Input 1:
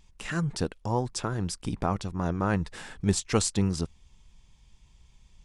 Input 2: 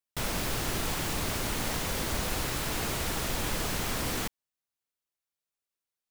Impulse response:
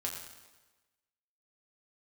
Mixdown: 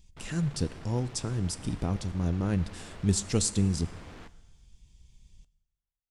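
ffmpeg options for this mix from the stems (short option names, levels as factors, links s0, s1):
-filter_complex "[0:a]equalizer=f=1100:w=0.58:g=-14.5,volume=1,asplit=2[s0][s1];[s1]volume=0.237[s2];[1:a]volume=50.1,asoftclip=hard,volume=0.02,adynamicsmooth=sensitivity=3:basefreq=2600,volume=0.282,asplit=2[s3][s4];[s4]volume=0.282[s5];[2:a]atrim=start_sample=2205[s6];[s2][s5]amix=inputs=2:normalize=0[s7];[s7][s6]afir=irnorm=-1:irlink=0[s8];[s0][s3][s8]amix=inputs=3:normalize=0"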